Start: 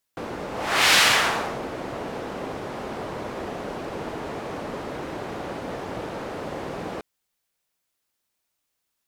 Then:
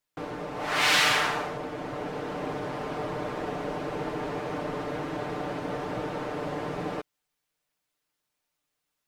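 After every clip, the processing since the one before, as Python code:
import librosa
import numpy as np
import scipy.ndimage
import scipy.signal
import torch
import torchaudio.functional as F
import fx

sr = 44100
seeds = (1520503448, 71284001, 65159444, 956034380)

y = fx.rider(x, sr, range_db=4, speed_s=2.0)
y = fx.high_shelf(y, sr, hz=4700.0, db=-6.0)
y = y + 0.65 * np.pad(y, (int(6.7 * sr / 1000.0), 0))[:len(y)]
y = y * 10.0 ** (-5.5 / 20.0)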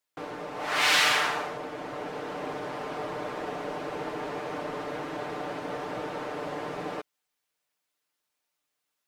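y = fx.low_shelf(x, sr, hz=210.0, db=-10.5)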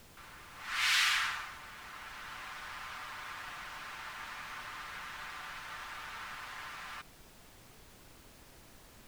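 y = scipy.signal.sosfilt(scipy.signal.butter(4, 1200.0, 'highpass', fs=sr, output='sos'), x)
y = fx.rider(y, sr, range_db=3, speed_s=2.0)
y = fx.dmg_noise_colour(y, sr, seeds[0], colour='pink', level_db=-52.0)
y = y * 10.0 ** (-4.5 / 20.0)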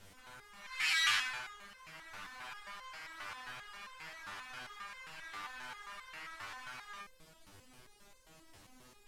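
y = scipy.signal.sosfilt(scipy.signal.butter(2, 12000.0, 'lowpass', fs=sr, output='sos'), x)
y = fx.resonator_held(y, sr, hz=7.5, low_hz=99.0, high_hz=520.0)
y = y * 10.0 ** (9.0 / 20.0)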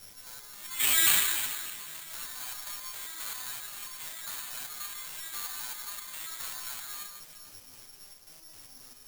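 y = fx.echo_alternate(x, sr, ms=149, hz=2300.0, feedback_pct=62, wet_db=-5.5)
y = (np.kron(y[::8], np.eye(8)[0]) * 8)[:len(y)]
y = y * 10.0 ** (-1.5 / 20.0)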